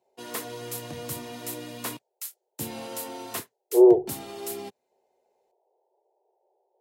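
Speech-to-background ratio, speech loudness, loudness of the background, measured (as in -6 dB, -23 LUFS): 17.0 dB, -19.0 LUFS, -36.0 LUFS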